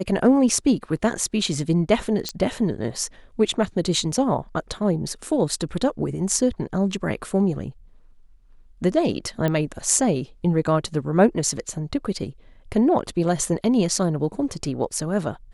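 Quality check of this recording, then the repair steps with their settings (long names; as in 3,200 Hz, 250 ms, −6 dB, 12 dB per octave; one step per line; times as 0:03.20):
0:02.29: click −11 dBFS
0:09.48: click −12 dBFS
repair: click removal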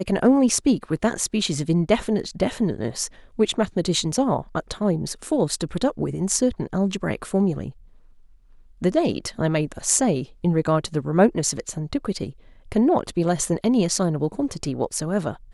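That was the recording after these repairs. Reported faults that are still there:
0:02.29: click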